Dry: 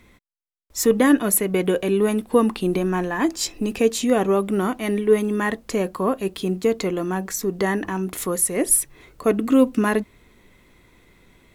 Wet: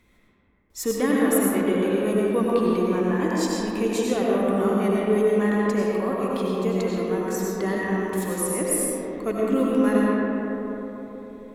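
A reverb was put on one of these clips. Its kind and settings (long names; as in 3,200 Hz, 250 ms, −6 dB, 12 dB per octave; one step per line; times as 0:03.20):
comb and all-pass reverb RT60 4 s, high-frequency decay 0.3×, pre-delay 55 ms, DRR −5 dB
level −8.5 dB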